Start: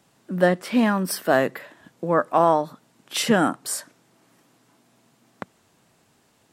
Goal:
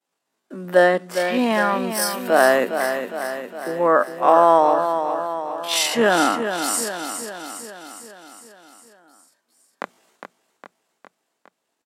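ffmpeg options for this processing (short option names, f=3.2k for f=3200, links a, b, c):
-af "agate=range=-33dB:threshold=-50dB:ratio=3:detection=peak,atempo=0.55,highpass=360,aecho=1:1:409|818|1227|1636|2045|2454|2863:0.398|0.231|0.134|0.0777|0.0451|0.0261|0.0152,volume=4dB"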